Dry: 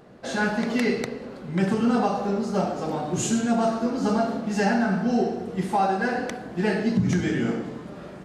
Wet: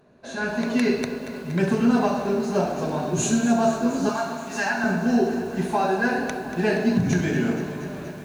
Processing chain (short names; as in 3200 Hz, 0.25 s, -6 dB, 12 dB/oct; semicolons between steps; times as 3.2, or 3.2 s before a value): ripple EQ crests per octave 1.5, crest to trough 7 dB; AGC gain up to 11.5 dB; 4.09–4.84 resonant low shelf 650 Hz -12.5 dB, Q 1.5; lo-fi delay 0.236 s, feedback 80%, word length 6-bit, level -13 dB; gain -8 dB